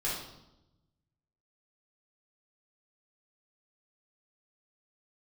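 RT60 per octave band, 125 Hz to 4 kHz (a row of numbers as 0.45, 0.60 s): 1.7, 1.3, 0.95, 0.85, 0.65, 0.75 s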